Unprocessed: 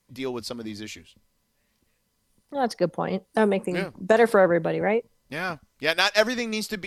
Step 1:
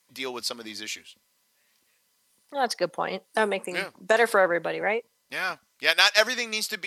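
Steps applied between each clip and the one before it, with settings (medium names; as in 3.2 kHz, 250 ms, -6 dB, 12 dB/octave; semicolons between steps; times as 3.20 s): high-pass 1.3 kHz 6 dB/octave; in parallel at +2.5 dB: gain riding within 4 dB 2 s; on the sum: trim -3.5 dB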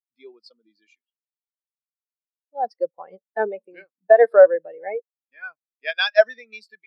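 spectral contrast expander 2.5:1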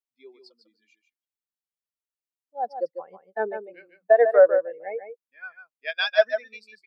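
delay 148 ms -8.5 dB; trim -4 dB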